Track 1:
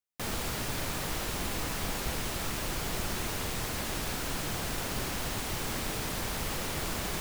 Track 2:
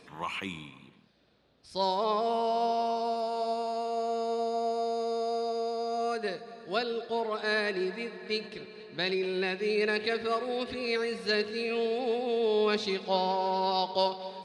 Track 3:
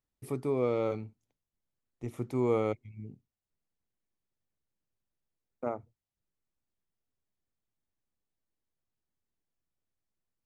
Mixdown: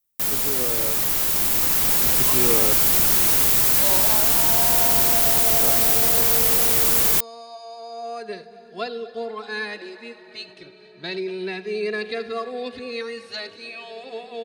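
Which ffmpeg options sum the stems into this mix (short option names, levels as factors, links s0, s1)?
-filter_complex "[0:a]aemphasis=mode=production:type=50fm,volume=1.33[s0];[1:a]asplit=2[s1][s2];[s2]adelay=2.6,afreqshift=0.32[s3];[s1][s3]amix=inputs=2:normalize=1,adelay=2050,volume=0.708[s4];[2:a]volume=0.794[s5];[s0][s4][s5]amix=inputs=3:normalize=0,lowshelf=f=110:g=-6.5,dynaudnorm=f=160:g=21:m=2"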